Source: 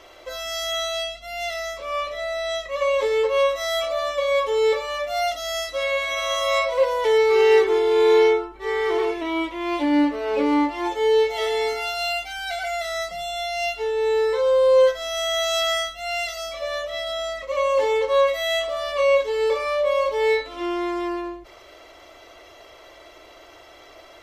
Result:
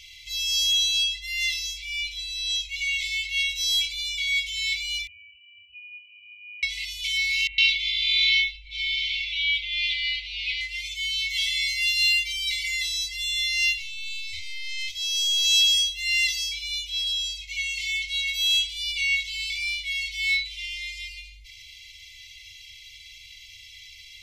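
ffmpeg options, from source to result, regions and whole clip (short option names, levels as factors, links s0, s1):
-filter_complex "[0:a]asettb=1/sr,asplit=3[s0][s1][s2];[s0]atrim=end=5.074[s3];[s1]atrim=start=5.07:end=6.63,asetpts=PTS-STARTPTS,afade=t=in:d=0.004:c=qsin,afade=t=out:st=1.556:d=0.004:c=qsin,equalizer=f=97:t=o:w=1:g=-13,lowpass=f=2600:t=q:w=0.5098,lowpass=f=2600:t=q:w=0.6013,lowpass=f=2600:t=q:w=0.9,lowpass=f=2600:t=q:w=2.563,afreqshift=-3000,asuperstop=centerf=2100:order=4:qfactor=0.86[s4];[s2]atrim=start=6.626[s5];[s3][s4]acrossfade=d=0.004:c1=hsin:c2=qsin[s6];[s6][s5]acrossfade=d=0.004:c1=qsin:c2=hsin,asettb=1/sr,asplit=3[s7][s8][s9];[s7]atrim=end=7.474[s10];[s8]atrim=start=7.47:end=10.61,asetpts=PTS-STARTPTS,afade=t=in:d=0.004:c=qsin,afade=t=out:st=3.136:d=0.004:c=qsin,lowpass=f=3700:t=q:w=2.2,acrossover=split=1400[s11][s12];[s12]adelay=110[s13];[s11][s13]amix=inputs=2:normalize=0,atrim=end_sample=138474[s14];[s9]atrim=start=10.606[s15];[s10][s14]acrossfade=d=0.004:c1=hsin:c2=qsin[s16];[s16][s15]acrossfade=d=0.004:c1=qsin:c2=hsin,asettb=1/sr,asplit=3[s17][s18][s19];[s17]atrim=end=13.784[s20];[s18]atrim=start=13.78:end=15.45,asetpts=PTS-STARTPTS,afade=t=in:d=0.004:c=qsin,afade=t=out:st=1.666:d=0.004:c=qsin,highpass=f=61:w=0.5412,highpass=f=61:w=1.3066,aeval=exprs='(tanh(11.2*val(0)+0.25)-tanh(0.25))/11.2':c=same[s21];[s19]atrim=start=15.446[s22];[s20][s21]acrossfade=d=0.004:c1=hsin:c2=qsin[s23];[s23][s22]acrossfade=d=0.004:c1=qsin:c2=hsin,equalizer=f=4400:t=o:w=1.9:g=5.5,afftfilt=real='re*(1-between(b*sr/4096,110,2000))':imag='im*(1-between(b*sr/4096,110,2000))':win_size=4096:overlap=0.75,volume=1.33"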